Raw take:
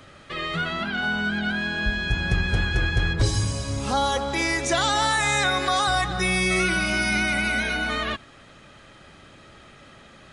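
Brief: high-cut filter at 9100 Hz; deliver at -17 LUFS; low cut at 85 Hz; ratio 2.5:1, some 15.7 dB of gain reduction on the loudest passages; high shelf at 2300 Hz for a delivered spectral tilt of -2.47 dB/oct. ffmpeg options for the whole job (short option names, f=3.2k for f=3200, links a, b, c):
-af "highpass=85,lowpass=9.1k,highshelf=f=2.3k:g=8,acompressor=threshold=-41dB:ratio=2.5,volume=18dB"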